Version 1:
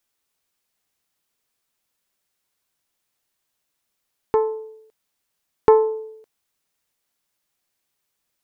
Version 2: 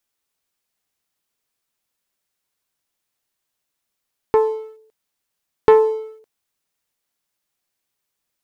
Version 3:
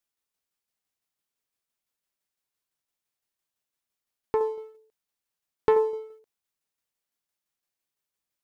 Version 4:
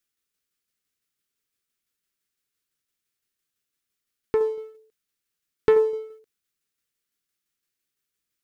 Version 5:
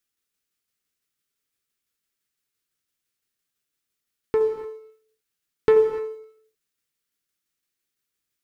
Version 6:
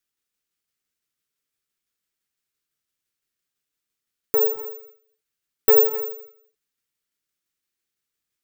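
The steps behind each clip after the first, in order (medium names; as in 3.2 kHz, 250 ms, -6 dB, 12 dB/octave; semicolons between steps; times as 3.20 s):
waveshaping leveller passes 1
tremolo saw down 5.9 Hz, depth 40%; trim -6.5 dB
high-order bell 770 Hz -10 dB 1.1 oct; trim +4 dB
gated-style reverb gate 320 ms flat, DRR 8 dB
careless resampling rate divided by 2×, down filtered, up zero stuff; trim -1.5 dB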